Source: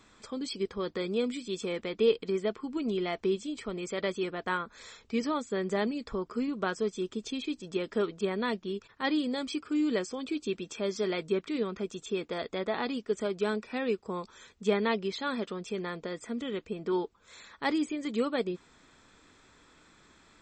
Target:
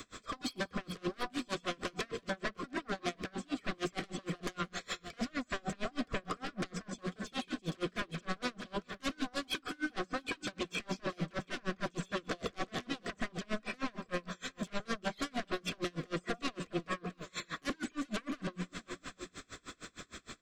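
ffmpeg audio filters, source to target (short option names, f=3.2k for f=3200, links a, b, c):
-filter_complex "[0:a]acrossover=split=3700[a][b];[b]acompressor=threshold=-57dB:ratio=4:attack=1:release=60[c];[a][c]amix=inputs=2:normalize=0,highshelf=f=6.4k:g=6,bandreject=f=60:t=h:w=6,bandreject=f=120:t=h:w=6,bandreject=f=180:t=h:w=6,acrossover=split=240[d][e];[e]acompressor=threshold=-38dB:ratio=6[f];[d][f]amix=inputs=2:normalize=0,aeval=exprs='0.0596*sin(PI/2*5.62*val(0)/0.0596)':c=same,asuperstop=centerf=880:order=12:qfactor=4.5,aecho=1:1:56|179|394|698:0.158|0.168|0.224|0.237,aeval=exprs='val(0)*pow(10,-32*(0.5-0.5*cos(2*PI*6.5*n/s))/20)':c=same,volume=-4dB"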